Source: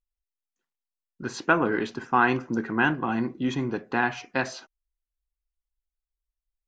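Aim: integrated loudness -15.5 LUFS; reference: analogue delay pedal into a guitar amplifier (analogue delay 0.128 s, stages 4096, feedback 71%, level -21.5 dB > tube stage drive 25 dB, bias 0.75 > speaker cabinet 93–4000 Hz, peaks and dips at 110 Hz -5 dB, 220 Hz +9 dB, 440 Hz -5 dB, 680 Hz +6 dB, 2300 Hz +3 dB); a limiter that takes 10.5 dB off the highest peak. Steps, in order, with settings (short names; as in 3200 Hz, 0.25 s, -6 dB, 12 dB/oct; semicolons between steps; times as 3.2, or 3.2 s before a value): limiter -17 dBFS; analogue delay 0.128 s, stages 4096, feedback 71%, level -21.5 dB; tube stage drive 25 dB, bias 0.75; speaker cabinet 93–4000 Hz, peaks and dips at 110 Hz -5 dB, 220 Hz +9 dB, 440 Hz -5 dB, 680 Hz +6 dB, 2300 Hz +3 dB; gain +16.5 dB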